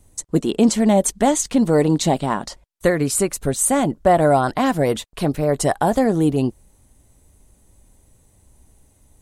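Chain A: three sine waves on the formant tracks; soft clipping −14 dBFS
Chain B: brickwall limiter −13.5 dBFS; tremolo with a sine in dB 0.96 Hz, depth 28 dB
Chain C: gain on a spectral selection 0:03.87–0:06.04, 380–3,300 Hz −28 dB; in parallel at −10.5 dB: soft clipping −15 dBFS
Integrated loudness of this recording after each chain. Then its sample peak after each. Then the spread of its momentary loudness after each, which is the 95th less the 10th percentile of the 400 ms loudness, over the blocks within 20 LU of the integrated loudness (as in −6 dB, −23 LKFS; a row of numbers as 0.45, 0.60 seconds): −22.5, −28.0, −18.5 LKFS; −14.0, −13.5, −3.5 dBFS; 7, 20, 8 LU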